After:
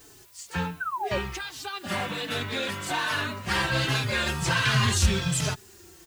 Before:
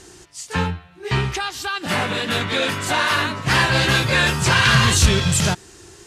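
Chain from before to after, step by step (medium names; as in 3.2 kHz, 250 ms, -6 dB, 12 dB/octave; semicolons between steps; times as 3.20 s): added noise blue -48 dBFS; painted sound fall, 0.80–1.18 s, 520–1600 Hz -22 dBFS; endless flanger 4.1 ms -1.3 Hz; trim -5.5 dB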